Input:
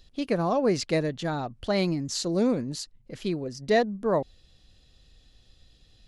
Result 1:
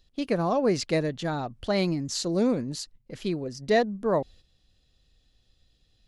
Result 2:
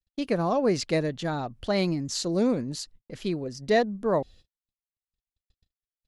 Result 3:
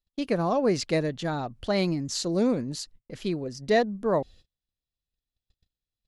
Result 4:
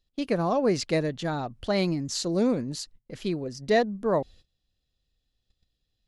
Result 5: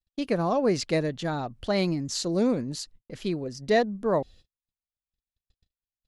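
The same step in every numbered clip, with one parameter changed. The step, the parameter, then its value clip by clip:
noise gate, range: −8, −60, −34, −20, −47 decibels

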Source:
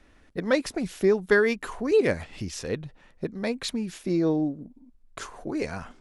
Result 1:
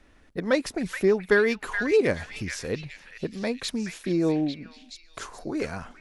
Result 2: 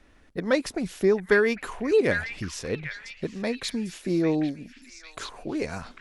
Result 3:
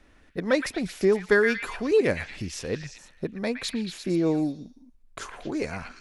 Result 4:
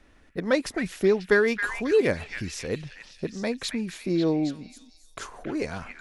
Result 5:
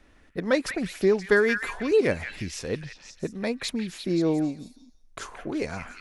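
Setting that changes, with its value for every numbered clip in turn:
echo through a band-pass that steps, delay time: 424, 798, 115, 271, 175 milliseconds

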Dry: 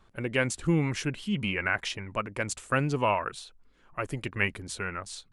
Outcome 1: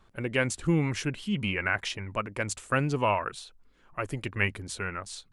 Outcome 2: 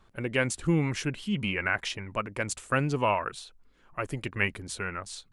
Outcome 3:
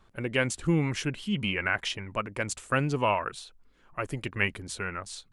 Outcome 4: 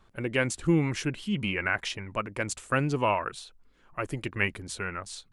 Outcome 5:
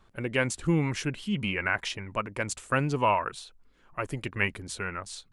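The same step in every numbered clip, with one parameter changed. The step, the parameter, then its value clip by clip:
dynamic equaliser, frequency: 100, 9,700, 3,100, 330, 960 Hertz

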